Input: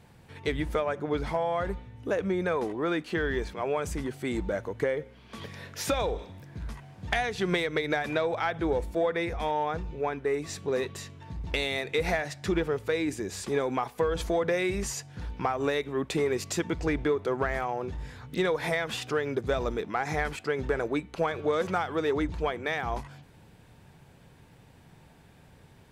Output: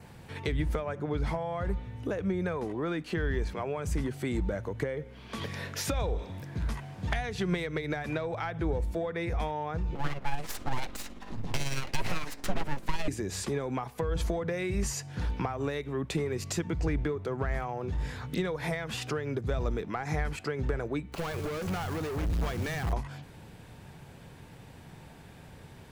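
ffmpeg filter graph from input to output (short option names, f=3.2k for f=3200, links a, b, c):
-filter_complex "[0:a]asettb=1/sr,asplit=3[a][b][c];[a]atrim=end=9.954[d];[b]atrim=start=9.95:end=13.08,asetpts=PTS-STARTPTS,afade=t=in:d=0.004:c=qsin,afade=t=out:st=3.126:d=0.004:c=qsin,aeval=exprs='abs(val(0))':c=same,tremolo=f=18:d=0.44[e];[c]atrim=start=13.076[f];[d][e]acrossfade=d=0.004:c1=hsin:c2=qsin[g];[g][f]acrossfade=d=0.004:c1=qsin:c2=hsin,asettb=1/sr,asplit=3[h][i][j];[h]atrim=end=21.124[k];[i]atrim=start=21.12:end=22.93,asetpts=PTS-STARTPTS,afade=t=in:d=0.004:c=qsin,afade=t=out:st=1.806:d=0.004:c=qsin,asubboost=boost=6:cutoff=230,asoftclip=type=hard:threshold=-29.5dB,acrusher=bits=2:mode=log:mix=0:aa=0.000001[l];[j]atrim=start=22.926[m];[k][l]acrossfade=d=0.004:c1=hsin:c2=qsin[n];[n][m]acrossfade=d=0.004:c1=qsin:c2=hsin,adynamicequalizer=threshold=0.00158:dfrequency=3500:dqfactor=6.2:tfrequency=3500:tqfactor=6.2:attack=5:release=100:ratio=0.375:range=2:mode=cutabove:tftype=bell,acrossover=split=170[o][p];[p]acompressor=threshold=-39dB:ratio=4[q];[o][q]amix=inputs=2:normalize=0,volume=5.5dB"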